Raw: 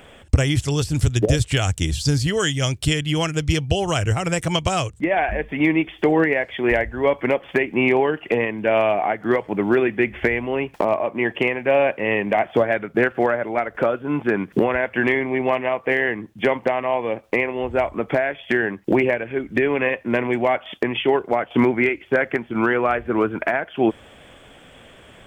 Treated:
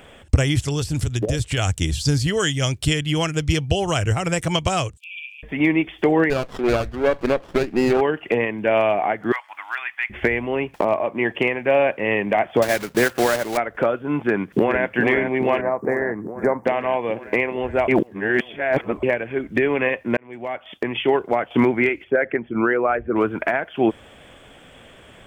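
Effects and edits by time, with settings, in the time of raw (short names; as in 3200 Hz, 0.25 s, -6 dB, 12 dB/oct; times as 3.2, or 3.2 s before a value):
0.68–1.58 compressor 2.5:1, threshold -19 dBFS
4.97–5.43 brick-wall FIR high-pass 2300 Hz
6.3–8.01 running maximum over 17 samples
9.32–10.1 inverse Chebyshev high-pass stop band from 470 Hz
12.62–13.59 block floating point 3-bit
14.18–14.92 echo throw 0.42 s, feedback 75%, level -7 dB
15.61–16.65 Butterworth band-stop 3100 Hz, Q 0.68
17.88–19.03 reverse
20.17–21.1 fade in
22.04–23.16 formant sharpening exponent 1.5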